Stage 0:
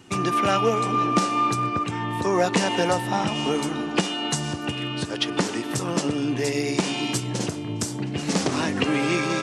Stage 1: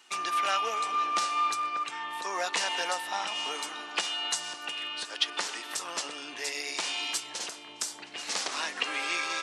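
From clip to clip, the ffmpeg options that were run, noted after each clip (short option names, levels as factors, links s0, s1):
-af "highpass=960,equalizer=f=4000:t=o:w=0.77:g=3,volume=0.668"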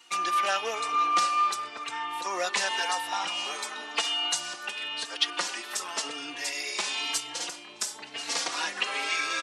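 -filter_complex "[0:a]asplit=2[s0][s1];[s1]adelay=3.8,afreqshift=0.95[s2];[s0][s2]amix=inputs=2:normalize=1,volume=1.78"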